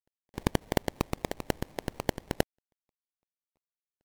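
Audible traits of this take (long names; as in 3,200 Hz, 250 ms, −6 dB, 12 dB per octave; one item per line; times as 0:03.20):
a quantiser's noise floor 12 bits, dither none
sample-and-hold tremolo 2 Hz
aliases and images of a low sample rate 1,400 Hz, jitter 20%
MP3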